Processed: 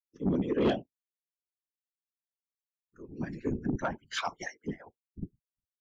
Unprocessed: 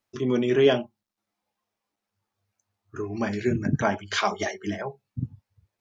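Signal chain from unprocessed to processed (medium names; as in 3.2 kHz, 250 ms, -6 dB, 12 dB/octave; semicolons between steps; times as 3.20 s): expander on every frequency bin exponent 2; peaking EQ 270 Hz +14.5 dB 0.24 oct; whisper effect; saturation -15.5 dBFS, distortion -10 dB; trim -5 dB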